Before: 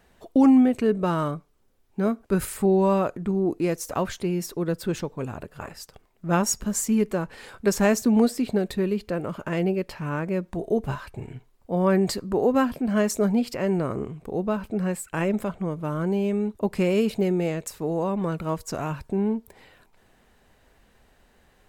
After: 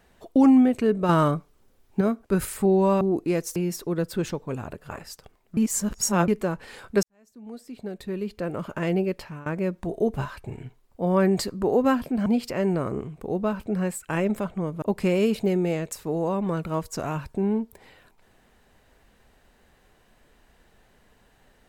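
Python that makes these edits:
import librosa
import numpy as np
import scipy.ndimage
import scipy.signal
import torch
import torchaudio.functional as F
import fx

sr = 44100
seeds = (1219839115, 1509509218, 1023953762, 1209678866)

y = fx.edit(x, sr, fx.clip_gain(start_s=1.09, length_s=0.92, db=5.5),
    fx.cut(start_s=3.01, length_s=0.34),
    fx.cut(start_s=3.9, length_s=0.36),
    fx.reverse_span(start_s=6.27, length_s=0.71),
    fx.fade_in_span(start_s=7.73, length_s=1.58, curve='qua'),
    fx.fade_out_to(start_s=9.87, length_s=0.29, floor_db=-20.5),
    fx.cut(start_s=12.96, length_s=0.34),
    fx.cut(start_s=15.86, length_s=0.71), tone=tone)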